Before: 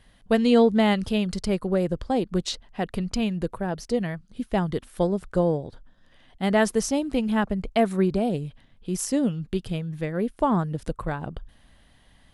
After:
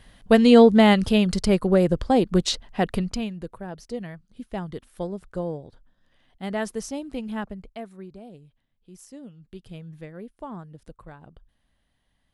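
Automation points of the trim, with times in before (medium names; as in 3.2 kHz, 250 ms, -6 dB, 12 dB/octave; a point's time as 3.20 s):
2.92 s +5 dB
3.35 s -7.5 dB
7.43 s -7.5 dB
7.93 s -19 dB
9.32 s -19 dB
9.88 s -8.5 dB
10.32 s -15 dB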